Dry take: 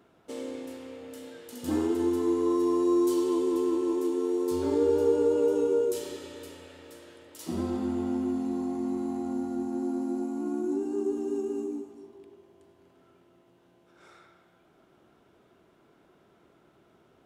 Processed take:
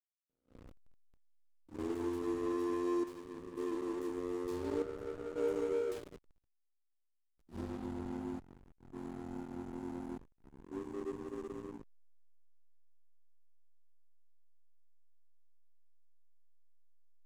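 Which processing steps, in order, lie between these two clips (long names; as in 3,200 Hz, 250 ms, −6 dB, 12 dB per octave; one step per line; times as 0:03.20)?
square-wave tremolo 0.56 Hz, depth 60%, duty 70%
slack as between gear wheels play −27.5 dBFS
dynamic equaliser 250 Hz, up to −4 dB, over −37 dBFS, Q 0.77
level that may rise only so fast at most 260 dB per second
level −6 dB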